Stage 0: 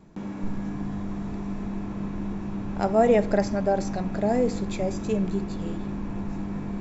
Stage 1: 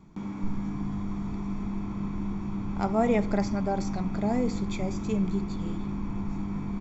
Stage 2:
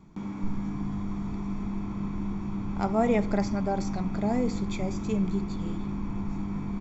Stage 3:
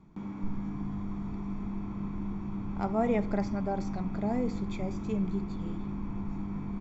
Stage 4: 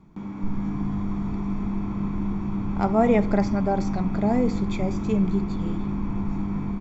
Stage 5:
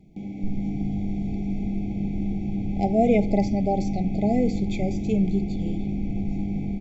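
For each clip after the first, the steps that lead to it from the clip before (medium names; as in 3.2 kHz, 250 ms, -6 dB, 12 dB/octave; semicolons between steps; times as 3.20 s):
comb 0.9 ms, depth 51%; trim -3 dB
no audible change
low-pass 3 kHz 6 dB/octave; trim -3.5 dB
level rider gain up to 4.5 dB; trim +4 dB
FFT band-reject 830–2000 Hz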